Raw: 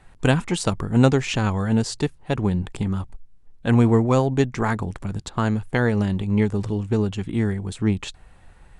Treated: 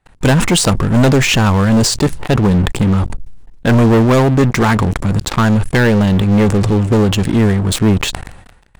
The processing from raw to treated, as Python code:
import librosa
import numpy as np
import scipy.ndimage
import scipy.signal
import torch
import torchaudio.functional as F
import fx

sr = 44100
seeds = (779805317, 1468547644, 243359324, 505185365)

y = fx.leveller(x, sr, passes=5)
y = fx.sustainer(y, sr, db_per_s=64.0)
y = y * 10.0 ** (-4.0 / 20.0)